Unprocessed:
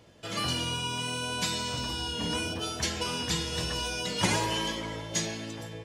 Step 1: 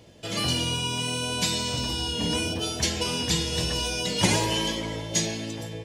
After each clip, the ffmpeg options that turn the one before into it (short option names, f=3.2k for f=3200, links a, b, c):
-af "equalizer=f=1.3k:w=1.4:g=-7.5,volume=5.5dB"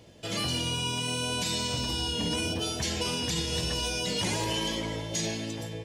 -af "alimiter=limit=-19dB:level=0:latency=1:release=38,volume=-1.5dB"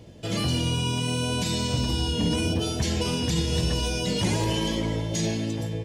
-af "lowshelf=f=450:g=9.5"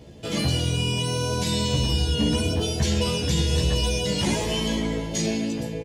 -filter_complex "[0:a]asplit=2[a][b];[b]adelay=14,volume=-2dB[c];[a][c]amix=inputs=2:normalize=0"